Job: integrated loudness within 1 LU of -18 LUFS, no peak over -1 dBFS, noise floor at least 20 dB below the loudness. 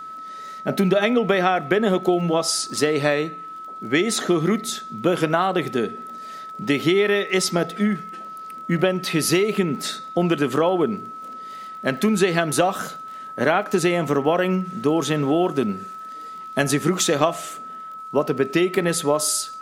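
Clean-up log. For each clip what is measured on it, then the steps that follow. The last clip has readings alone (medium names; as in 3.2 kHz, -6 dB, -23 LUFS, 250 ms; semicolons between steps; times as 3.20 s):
tick rate 25 per s; steady tone 1.3 kHz; tone level -33 dBFS; loudness -21.5 LUFS; peak level -2.0 dBFS; loudness target -18.0 LUFS
-> de-click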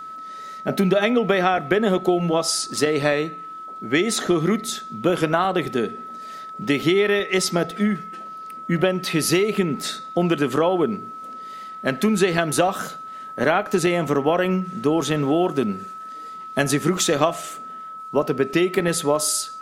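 tick rate 0.25 per s; steady tone 1.3 kHz; tone level -33 dBFS
-> band-stop 1.3 kHz, Q 30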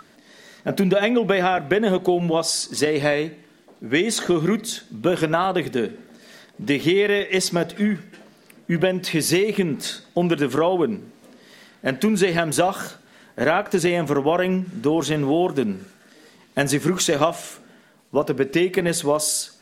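steady tone not found; loudness -21.5 LUFS; peak level -2.0 dBFS; loudness target -18.0 LUFS
-> trim +3.5 dB; peak limiter -1 dBFS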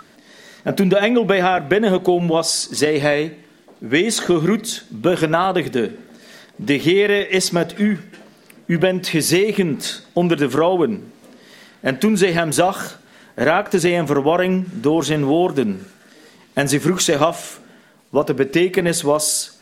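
loudness -18.0 LUFS; peak level -1.0 dBFS; noise floor -50 dBFS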